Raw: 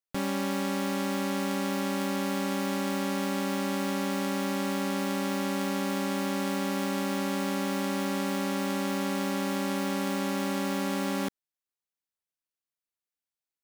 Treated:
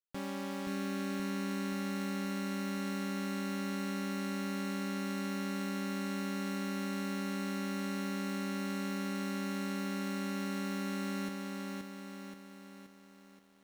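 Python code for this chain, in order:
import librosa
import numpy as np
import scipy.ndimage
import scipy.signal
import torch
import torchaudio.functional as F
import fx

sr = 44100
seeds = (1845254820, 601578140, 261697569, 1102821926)

y = fx.high_shelf(x, sr, hz=7200.0, db=-4.5)
y = fx.echo_crushed(y, sr, ms=526, feedback_pct=55, bits=10, wet_db=-3.0)
y = y * librosa.db_to_amplitude(-9.0)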